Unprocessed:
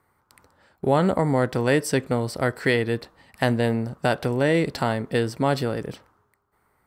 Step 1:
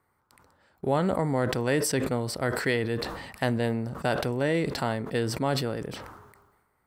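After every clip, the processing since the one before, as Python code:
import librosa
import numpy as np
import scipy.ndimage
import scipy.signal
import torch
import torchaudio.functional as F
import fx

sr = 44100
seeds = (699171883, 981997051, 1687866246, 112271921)

y = fx.sustainer(x, sr, db_per_s=46.0)
y = F.gain(torch.from_numpy(y), -5.5).numpy()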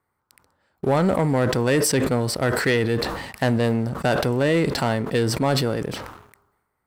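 y = fx.leveller(x, sr, passes=2)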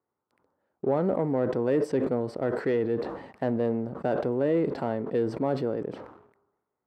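y = fx.bandpass_q(x, sr, hz=400.0, q=0.95)
y = F.gain(torch.from_numpy(y), -3.0).numpy()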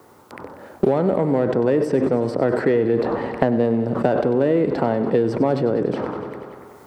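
y = fx.rider(x, sr, range_db=10, speed_s=2.0)
y = fx.echo_feedback(y, sr, ms=95, feedback_pct=57, wet_db=-13.0)
y = fx.band_squash(y, sr, depth_pct=100)
y = F.gain(torch.from_numpy(y), 7.0).numpy()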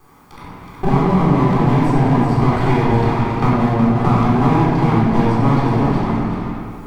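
y = fx.lower_of_two(x, sr, delay_ms=0.89)
y = y + 10.0 ** (-6.5 / 20.0) * np.pad(y, (int(370 * sr / 1000.0), 0))[:len(y)]
y = fx.room_shoebox(y, sr, seeds[0], volume_m3=800.0, walls='mixed', distance_m=3.8)
y = F.gain(torch.from_numpy(y), -5.0).numpy()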